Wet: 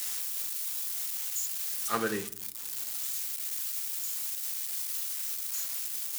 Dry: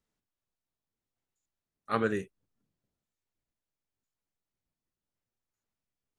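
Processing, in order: zero-crossing glitches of -24.5 dBFS; bass shelf 280 Hz -6 dB; band-stop 570 Hz, Q 15; simulated room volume 920 m³, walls furnished, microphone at 0.8 m

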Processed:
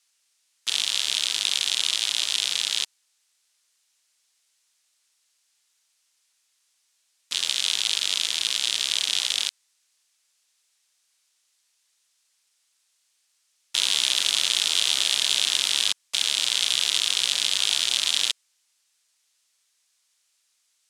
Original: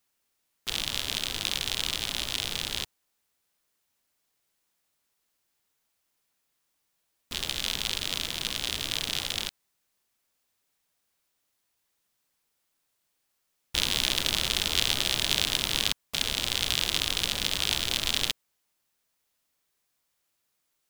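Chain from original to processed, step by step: saturation -17 dBFS, distortion -8 dB; frequency weighting ITU-R 468

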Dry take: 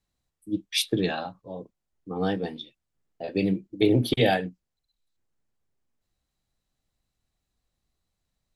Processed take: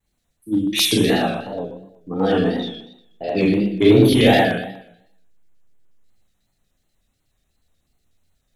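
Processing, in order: Schroeder reverb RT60 0.79 s, combs from 26 ms, DRR -5 dB; in parallel at -7 dB: hard clipper -19 dBFS, distortion -7 dB; on the sum: LFO notch square 8.2 Hz 1–4.8 kHz; vibrato 2.8 Hz 89 cents; trim +1.5 dB

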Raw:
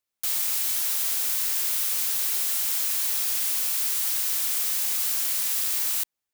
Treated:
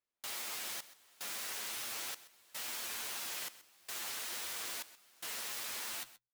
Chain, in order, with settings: low-pass 2 kHz 6 dB/octave; bass shelf 140 Hz -5 dB; hum notches 50/100/150 Hz; frequency shift -24 Hz; flange 0.41 Hz, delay 8.3 ms, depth 1.1 ms, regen +33%; wow and flutter 89 cents; trance gate "xxxxxx...x" 112 bpm -24 dB; delay 129 ms -16.5 dB; trim +1.5 dB

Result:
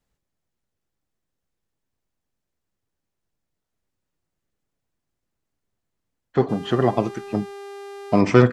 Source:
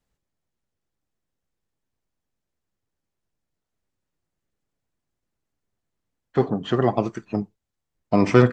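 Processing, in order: 6.48–8.20 s: mains buzz 400 Hz, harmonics 31, -38 dBFS -8 dB/octave; trim +1 dB

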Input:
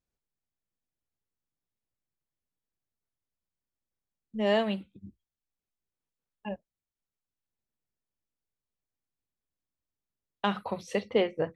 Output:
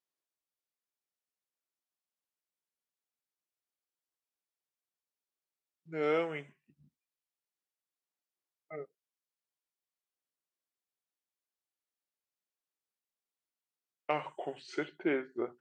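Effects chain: high-pass 490 Hz 12 dB/octave; speed mistake 45 rpm record played at 33 rpm; trim -3 dB

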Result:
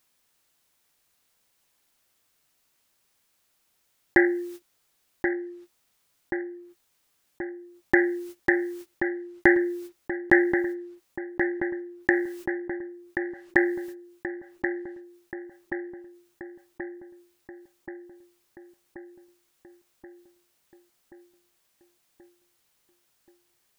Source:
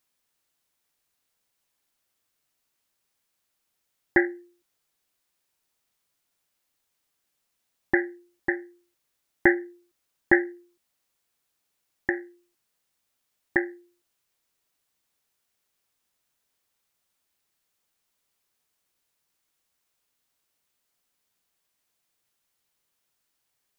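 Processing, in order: gate -56 dBFS, range -33 dB; filtered feedback delay 1080 ms, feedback 43%, low-pass 2.2 kHz, level -14 dB; level flattener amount 50%

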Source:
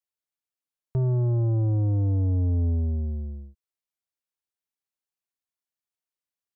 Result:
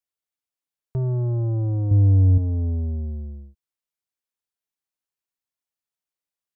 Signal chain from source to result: 1.91–2.38 s: bass shelf 210 Hz +10 dB

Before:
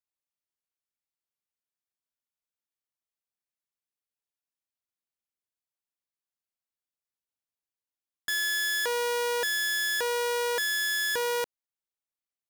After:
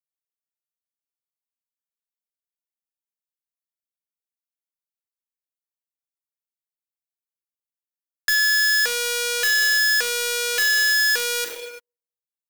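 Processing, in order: hum notches 50/100/150/200/250/300/350 Hz; hard clipper -32 dBFS, distortion -10 dB; peaking EQ 450 Hz +13.5 dB 2.9 oct; on a send at -12 dB: reverberation RT60 0.95 s, pre-delay 6 ms; on the sum: waveshaping leveller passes 5; compression, threshold -20 dBFS, peak gain reduction 4.5 dB; differentiator; waveshaping leveller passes 2; trim +7 dB

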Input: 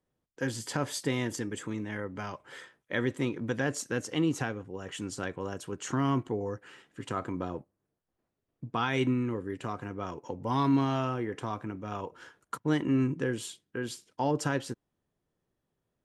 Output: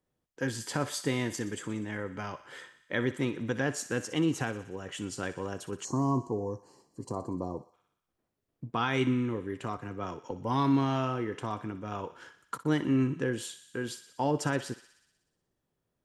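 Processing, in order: thinning echo 61 ms, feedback 70%, high-pass 720 Hz, level -13.5 dB; 5.84–7.74 s: time-frequency box 1.2–4 kHz -23 dB; 9.77–10.31 s: three bands expanded up and down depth 40%

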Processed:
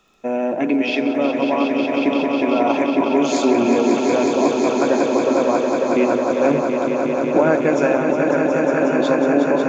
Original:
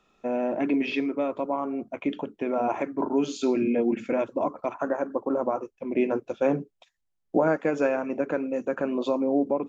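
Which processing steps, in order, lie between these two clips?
treble shelf 3.6 kHz +7.5 dB; crackle 11 per s -50 dBFS; echo with a slow build-up 182 ms, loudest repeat 5, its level -7 dB; trim +5.5 dB

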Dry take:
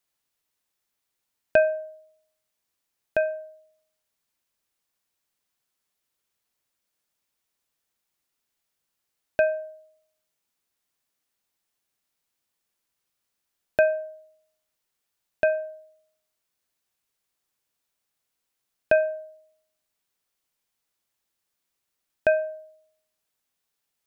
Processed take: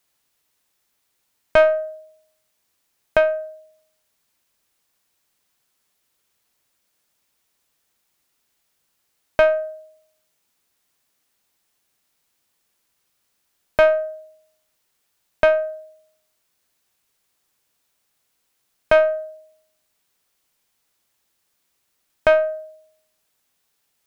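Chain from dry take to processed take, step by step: single-diode clipper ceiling -21 dBFS; loudness maximiser +10.5 dB; trim -1 dB

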